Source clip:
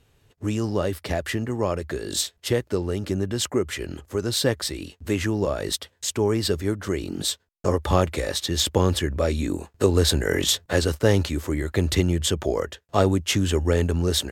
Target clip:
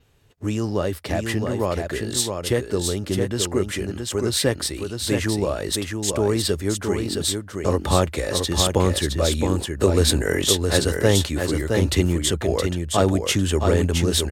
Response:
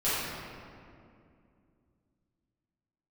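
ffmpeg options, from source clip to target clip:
-af "adynamicequalizer=threshold=0.00447:dfrequency=9300:dqfactor=3.3:tfrequency=9300:tqfactor=3.3:attack=5:release=100:ratio=0.375:range=3.5:mode=boostabove:tftype=bell,aecho=1:1:667:0.562,volume=1.12"

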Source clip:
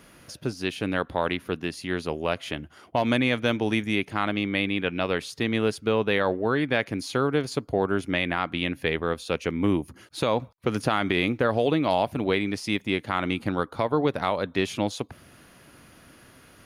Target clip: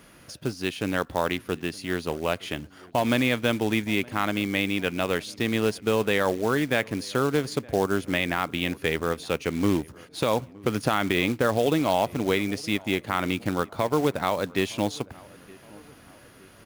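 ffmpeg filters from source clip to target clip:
-filter_complex "[0:a]acrusher=bits=4:mode=log:mix=0:aa=0.000001,asplit=2[s0][s1];[s1]adelay=917,lowpass=f=1800:p=1,volume=0.0708,asplit=2[s2][s3];[s3]adelay=917,lowpass=f=1800:p=1,volume=0.53,asplit=2[s4][s5];[s5]adelay=917,lowpass=f=1800:p=1,volume=0.53,asplit=2[s6][s7];[s7]adelay=917,lowpass=f=1800:p=1,volume=0.53[s8];[s0][s2][s4][s6][s8]amix=inputs=5:normalize=0"

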